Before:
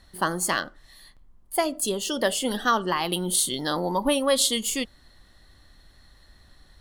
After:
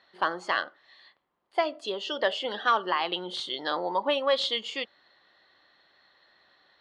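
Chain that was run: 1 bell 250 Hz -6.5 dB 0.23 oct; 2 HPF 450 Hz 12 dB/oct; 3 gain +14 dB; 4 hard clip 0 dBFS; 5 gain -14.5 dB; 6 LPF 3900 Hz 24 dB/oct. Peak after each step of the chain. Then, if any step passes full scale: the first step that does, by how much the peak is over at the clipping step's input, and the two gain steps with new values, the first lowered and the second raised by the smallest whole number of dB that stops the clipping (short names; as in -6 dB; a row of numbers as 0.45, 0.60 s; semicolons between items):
-7.0, -6.5, +7.5, 0.0, -14.5, -13.0 dBFS; step 3, 7.5 dB; step 3 +6 dB, step 5 -6.5 dB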